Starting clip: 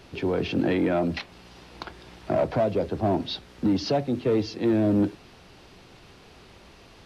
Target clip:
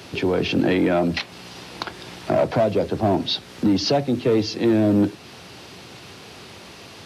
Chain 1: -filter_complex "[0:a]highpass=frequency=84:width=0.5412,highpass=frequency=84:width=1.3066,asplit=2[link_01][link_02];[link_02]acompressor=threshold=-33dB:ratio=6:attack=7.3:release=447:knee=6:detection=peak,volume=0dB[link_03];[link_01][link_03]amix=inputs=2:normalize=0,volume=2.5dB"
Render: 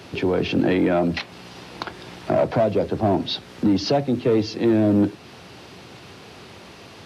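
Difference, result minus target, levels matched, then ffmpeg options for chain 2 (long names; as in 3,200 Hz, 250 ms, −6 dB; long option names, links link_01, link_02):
8,000 Hz band −4.5 dB
-filter_complex "[0:a]highpass=frequency=84:width=0.5412,highpass=frequency=84:width=1.3066,highshelf=frequency=3200:gain=6,asplit=2[link_01][link_02];[link_02]acompressor=threshold=-33dB:ratio=6:attack=7.3:release=447:knee=6:detection=peak,volume=0dB[link_03];[link_01][link_03]amix=inputs=2:normalize=0,volume=2.5dB"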